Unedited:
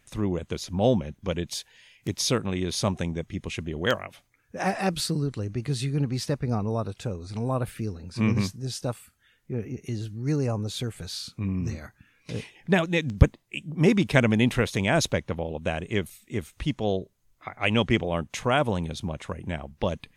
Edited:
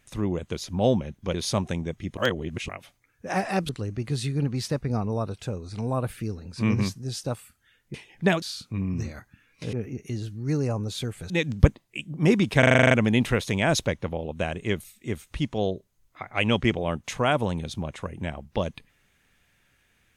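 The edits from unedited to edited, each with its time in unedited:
1.34–2.64 cut
3.47–3.99 reverse
4.99–5.27 cut
9.52–11.09 swap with 12.4–12.88
14.17 stutter 0.04 s, 9 plays

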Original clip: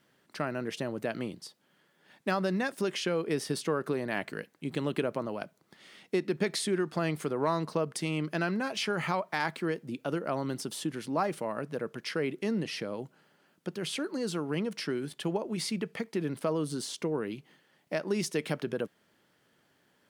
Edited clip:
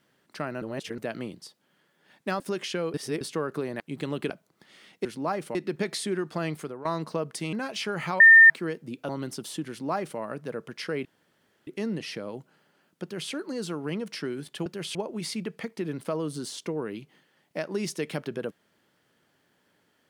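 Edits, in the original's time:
0.62–0.98 reverse
2.4–2.72 cut
3.26–3.53 reverse
4.12–4.54 cut
5.04–5.41 cut
7.14–7.46 fade out, to -15 dB
8.14–8.54 cut
9.21–9.51 bleep 1810 Hz -9 dBFS
10.1–10.36 cut
10.96–11.46 copy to 6.16
12.32 insert room tone 0.62 s
13.68–13.97 copy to 15.31

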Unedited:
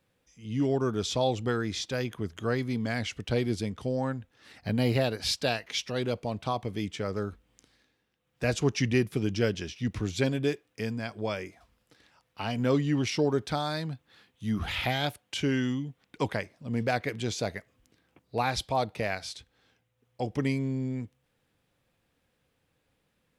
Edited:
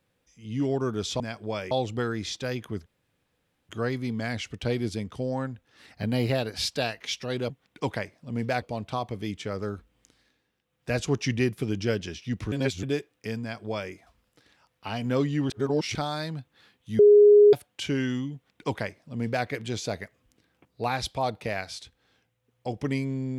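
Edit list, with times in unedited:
2.35 insert room tone 0.83 s
10.06–10.37 reverse
10.95–11.46 copy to 1.2
13.04–13.49 reverse
14.53–15.07 bleep 414 Hz -11 dBFS
15.88–17 copy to 6.16

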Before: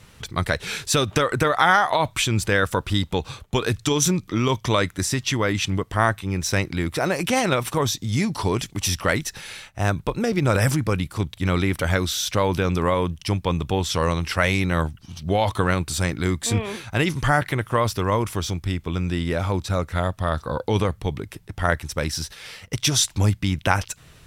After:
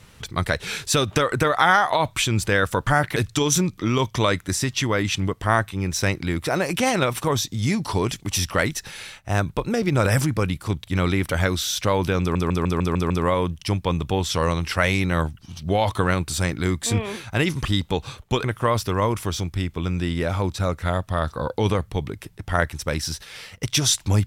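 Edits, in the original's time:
2.87–3.66 swap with 17.25–17.54
12.7 stutter 0.15 s, 7 plays

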